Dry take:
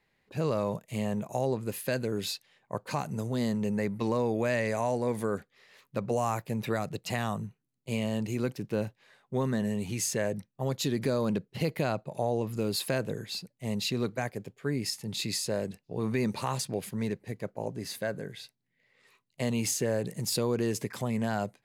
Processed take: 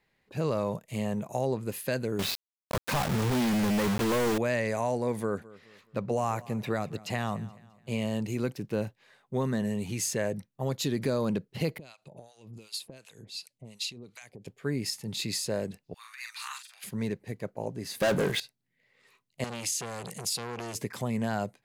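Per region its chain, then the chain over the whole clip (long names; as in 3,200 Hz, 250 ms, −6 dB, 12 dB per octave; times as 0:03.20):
0:02.19–0:04.38: low-pass filter 3,300 Hz + log-companded quantiser 2 bits
0:05.20–0:07.99: high-shelf EQ 6,900 Hz −6 dB + repeating echo 212 ms, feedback 40%, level −20 dB
0:11.78–0:14.47: downward compressor 16 to 1, threshold −40 dBFS + flat-topped bell 5,000 Hz +12 dB 2.6 octaves + two-band tremolo in antiphase 2.7 Hz, depth 100%, crossover 860 Hz
0:15.94–0:16.84: Butterworth high-pass 1,300 Hz + compressor whose output falls as the input rises −42 dBFS, ratio −0.5 + double-tracking delay 43 ms −5 dB
0:18.00–0:18.40: high-pass filter 230 Hz 6 dB per octave + leveller curve on the samples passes 5
0:19.44–0:20.75: flat-topped bell 5,000 Hz +9.5 dB 2.7 octaves + downward compressor, threshold −27 dBFS + saturating transformer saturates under 2,000 Hz
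whole clip: no processing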